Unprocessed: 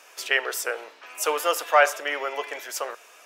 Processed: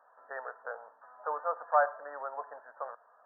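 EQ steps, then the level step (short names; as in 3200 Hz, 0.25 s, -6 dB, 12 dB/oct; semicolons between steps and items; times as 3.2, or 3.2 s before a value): brick-wall FIR low-pass 1900 Hz; low shelf 140 Hz -12 dB; fixed phaser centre 860 Hz, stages 4; -5.0 dB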